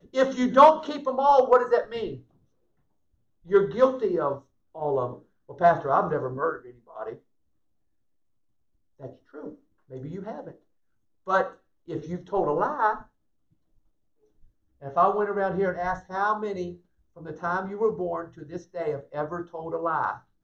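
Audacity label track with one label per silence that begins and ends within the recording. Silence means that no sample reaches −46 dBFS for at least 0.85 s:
2.210000	3.450000	silence
7.180000	9.000000	silence
13.060000	14.430000	silence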